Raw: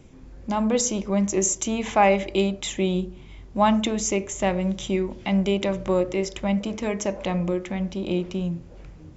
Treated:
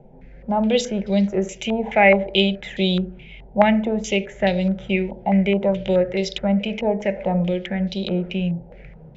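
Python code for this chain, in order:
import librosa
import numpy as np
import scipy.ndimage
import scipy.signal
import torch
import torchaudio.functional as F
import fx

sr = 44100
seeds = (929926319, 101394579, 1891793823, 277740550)

y = fx.fixed_phaser(x, sr, hz=300.0, stages=6)
y = fx.filter_held_lowpass(y, sr, hz=4.7, low_hz=870.0, high_hz=4000.0)
y = y * librosa.db_to_amplitude(4.5)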